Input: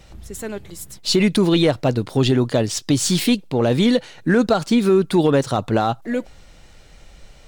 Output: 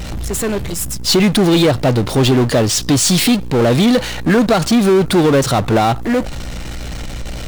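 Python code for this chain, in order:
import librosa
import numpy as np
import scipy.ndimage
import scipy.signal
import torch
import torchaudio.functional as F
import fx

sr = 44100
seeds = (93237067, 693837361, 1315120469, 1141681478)

y = fx.add_hum(x, sr, base_hz=60, snr_db=27)
y = fx.spec_box(y, sr, start_s=0.74, length_s=0.34, low_hz=290.0, high_hz=4700.0, gain_db=-11)
y = fx.power_curve(y, sr, exponent=0.5)
y = F.gain(torch.from_numpy(y), 1.0).numpy()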